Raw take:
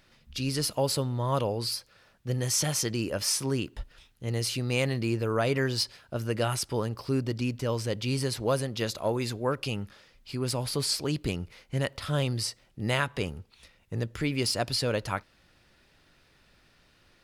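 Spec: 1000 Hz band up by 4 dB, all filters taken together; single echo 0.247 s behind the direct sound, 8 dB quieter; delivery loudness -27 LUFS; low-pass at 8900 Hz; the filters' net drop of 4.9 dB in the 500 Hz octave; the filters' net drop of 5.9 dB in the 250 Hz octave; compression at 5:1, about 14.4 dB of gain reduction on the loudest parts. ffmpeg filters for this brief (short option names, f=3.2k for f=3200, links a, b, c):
-af "lowpass=8.9k,equalizer=f=250:t=o:g=-6.5,equalizer=f=500:t=o:g=-6,equalizer=f=1k:t=o:g=7,acompressor=threshold=-38dB:ratio=5,aecho=1:1:247:0.398,volume=13.5dB"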